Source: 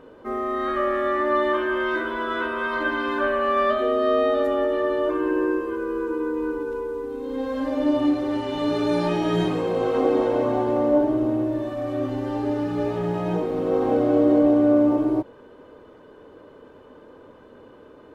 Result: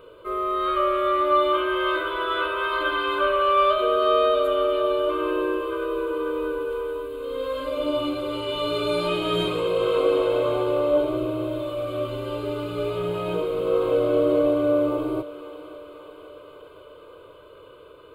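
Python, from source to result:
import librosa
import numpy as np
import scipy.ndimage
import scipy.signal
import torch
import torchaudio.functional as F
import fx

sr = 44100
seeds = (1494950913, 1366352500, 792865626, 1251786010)

y = fx.high_shelf(x, sr, hz=2000.0, db=9.5)
y = fx.fixed_phaser(y, sr, hz=1200.0, stages=8)
y = fx.echo_thinned(y, sr, ms=536, feedback_pct=73, hz=420.0, wet_db=-14.5)
y = y * librosa.db_to_amplitude(1.0)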